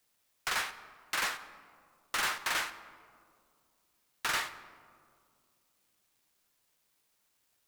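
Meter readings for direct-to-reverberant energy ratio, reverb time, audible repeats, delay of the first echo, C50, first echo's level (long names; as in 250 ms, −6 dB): 10.5 dB, 2.3 s, no echo audible, no echo audible, 13.0 dB, no echo audible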